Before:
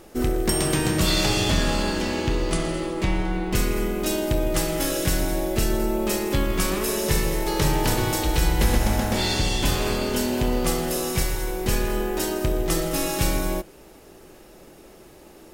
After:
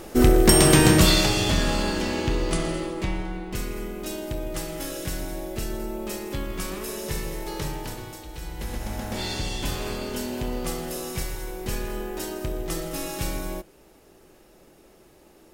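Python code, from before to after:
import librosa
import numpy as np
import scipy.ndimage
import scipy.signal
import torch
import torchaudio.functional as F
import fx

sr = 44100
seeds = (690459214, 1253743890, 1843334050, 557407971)

y = fx.gain(x, sr, db=fx.line((0.92, 7.0), (1.32, -1.0), (2.72, -1.0), (3.47, -8.0), (7.55, -8.0), (8.26, -17.5), (9.21, -6.5)))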